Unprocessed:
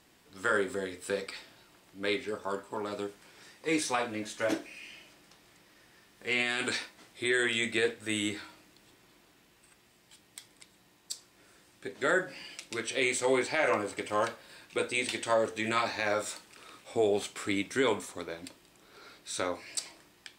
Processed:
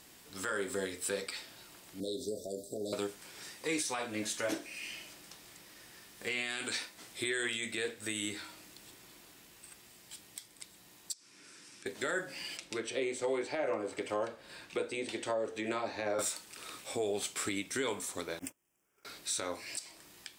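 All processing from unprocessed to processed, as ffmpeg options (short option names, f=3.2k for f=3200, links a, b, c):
-filter_complex "[0:a]asettb=1/sr,asplit=3[a][b][c];[a]atrim=end=2.004[d];[b]atrim=start=2:end=2.93,asetpts=PTS-STARTPTS,afade=t=in:d=0.004:c=qsin,afade=t=out:st=0.926:d=0.004:c=qsin,acompressor=threshold=-34dB:ratio=10:attack=3.2:release=140:knee=1:detection=peak,asuperstop=centerf=1600:order=20:qfactor=0.53[e];[c]atrim=start=2.926[f];[d][e]acrossfade=d=0.004:c1=hsin:c2=qsin[g];[g][f]acrossfade=d=0.004:c1=qsin:c2=hsin,asettb=1/sr,asplit=3[h][i][j];[h]atrim=end=11.134[k];[i]atrim=start=11.13:end=11.86,asetpts=PTS-STARTPTS,afade=t=in:d=0.004:c=qsin,afade=t=out:st=0.726:d=0.004:c=qsin,bandreject=f=60:t=h:w=6,bandreject=f=120:t=h:w=6,bandreject=f=180:t=h:w=6,bandreject=f=240:t=h:w=6,bandreject=f=300:t=h:w=6,bandreject=f=360:t=h:w=6,bandreject=f=420:t=h:w=6,bandreject=f=480:t=h:w=6,bandreject=f=540:t=h:w=6,acompressor=threshold=-58dB:ratio=8:attack=3.2:release=140:knee=1:detection=peak,highpass=f=110:w=0.5412,highpass=f=110:w=1.3066,equalizer=f=280:t=q:w=4:g=7,equalizer=f=710:t=q:w=4:g=-8,equalizer=f=1.5k:t=q:w=4:g=3,equalizer=f=2.4k:t=q:w=4:g=5,equalizer=f=5.5k:t=q:w=4:g=7,lowpass=f=9.9k:w=0.5412,lowpass=f=9.9k:w=1.3066[l];[j]atrim=start=11.856[m];[k][l]acrossfade=d=0.004:c1=hsin:c2=qsin[n];[n][m]acrossfade=d=0.004:c1=qsin:c2=hsin,asettb=1/sr,asplit=3[o][p][q];[o]atrim=end=12.574[r];[p]atrim=start=12.57:end=16.19,asetpts=PTS-STARTPTS,afade=t=in:d=0.004:c=qsin,afade=t=out:st=3.616:d=0.004:c=qsin,aemphasis=mode=reproduction:type=50kf,acrossover=split=300|660[s][t][u];[s]acompressor=threshold=-51dB:ratio=4[v];[t]acompressor=threshold=-31dB:ratio=4[w];[u]acompressor=threshold=-45dB:ratio=4[x];[v][w][x]amix=inputs=3:normalize=0[y];[q]atrim=start=16.186[z];[r][y]acrossfade=d=0.004:c1=hsin:c2=qsin[aa];[aa][z]acrossfade=d=0.004:c1=qsin:c2=hsin,asettb=1/sr,asplit=3[ab][ac][ad];[ab]atrim=end=18.394[ae];[ac]atrim=start=18.39:end=19.05,asetpts=PTS-STARTPTS,afade=t=in:d=0.004:c=qsin,afade=t=out:st=0.656:d=0.004:c=qsin,aeval=exprs='val(0)+0.5*0.00282*sgn(val(0))':c=same,asuperstop=centerf=4100:order=4:qfactor=1.7,agate=range=-31dB:threshold=-47dB:ratio=16:release=100:detection=peak[af];[ad]atrim=start=19.046[ag];[ae][af]acrossfade=d=0.004:c1=hsin:c2=qsin[ah];[ah][ag]acrossfade=d=0.004:c1=qsin:c2=hsin,highshelf=f=4.8k:g=10,alimiter=level_in=2.5dB:limit=-24dB:level=0:latency=1:release=373,volume=-2.5dB,volume=2.5dB"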